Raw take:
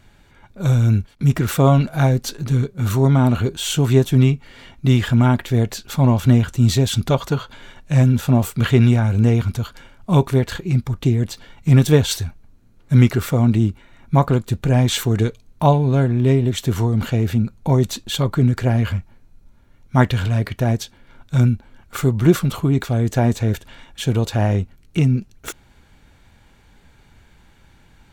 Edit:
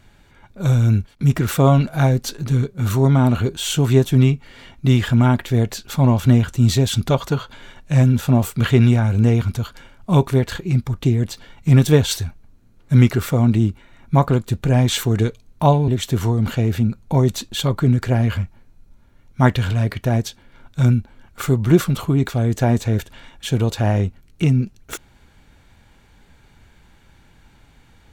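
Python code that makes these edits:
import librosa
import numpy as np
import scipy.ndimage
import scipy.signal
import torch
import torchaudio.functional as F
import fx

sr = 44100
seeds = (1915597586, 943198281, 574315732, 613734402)

y = fx.edit(x, sr, fx.cut(start_s=15.88, length_s=0.55), tone=tone)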